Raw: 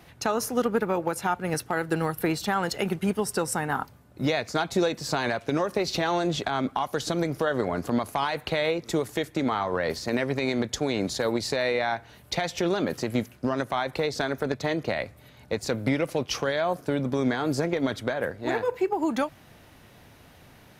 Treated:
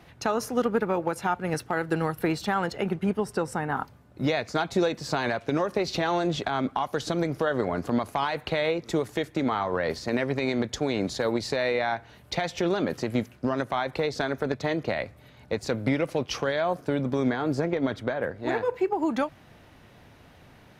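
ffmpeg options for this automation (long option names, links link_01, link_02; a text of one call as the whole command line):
ffmpeg -i in.wav -af "asetnsamples=nb_out_samples=441:pad=0,asendcmd='2.66 lowpass f 1900;3.77 lowpass f 4700;17.3 lowpass f 2300;18.36 lowpass f 4000',lowpass=frequency=4500:poles=1" out.wav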